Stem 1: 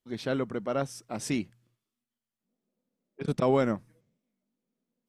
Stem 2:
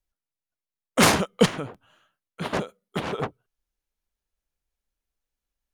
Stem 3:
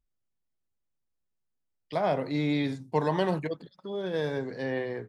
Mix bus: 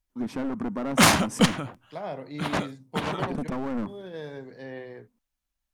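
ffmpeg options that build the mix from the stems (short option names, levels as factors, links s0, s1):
-filter_complex "[0:a]equalizer=f=250:t=o:w=0.67:g=12,equalizer=f=1000:t=o:w=0.67:g=10,equalizer=f=4000:t=o:w=0.67:g=-12,aeval=exprs='clip(val(0),-1,0.0501)':c=same,adelay=100,volume=1.26[s0];[1:a]equalizer=f=440:w=3.9:g=-12.5,volume=1.12[s1];[2:a]acontrast=29,volume=0.224[s2];[s0][s2]amix=inputs=2:normalize=0,alimiter=limit=0.0841:level=0:latency=1:release=52,volume=1[s3];[s1][s3]amix=inputs=2:normalize=0"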